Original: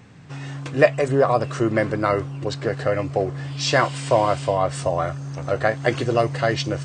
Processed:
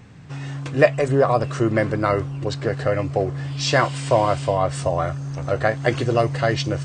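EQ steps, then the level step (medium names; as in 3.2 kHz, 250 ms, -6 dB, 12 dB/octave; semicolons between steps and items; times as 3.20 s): bass shelf 77 Hz +10 dB; 0.0 dB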